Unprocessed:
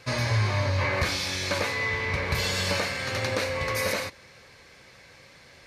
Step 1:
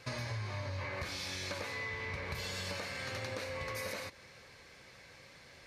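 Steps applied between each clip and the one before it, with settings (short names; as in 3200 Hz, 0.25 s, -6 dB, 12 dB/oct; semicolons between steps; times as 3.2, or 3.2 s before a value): compressor 5:1, threshold -33 dBFS, peak gain reduction 11.5 dB; gain -4.5 dB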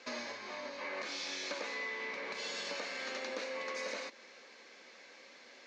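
Chebyshev band-pass 230–6900 Hz, order 4; gain +1 dB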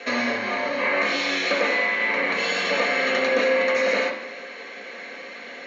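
reverb RT60 0.85 s, pre-delay 3 ms, DRR 0 dB; gain +5.5 dB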